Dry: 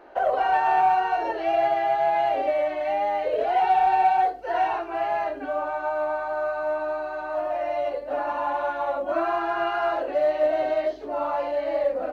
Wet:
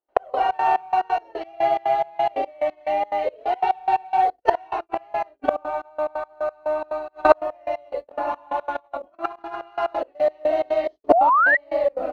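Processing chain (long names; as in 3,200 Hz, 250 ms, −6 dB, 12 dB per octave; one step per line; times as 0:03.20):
noise gate −29 dBFS, range −53 dB
parametric band 1,600 Hz −8 dB 0.26 octaves
0:08.75–0:09.61: compressor whose output falls as the input rises −32 dBFS, ratio −0.5
gate with flip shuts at −30 dBFS, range −31 dB
gate pattern ".x..xx.xx..x.x." 178 BPM −24 dB
0:11.12–0:11.57: sound drawn into the spectrogram rise 620–2,000 Hz −50 dBFS
boost into a limiter +35 dB
level −1 dB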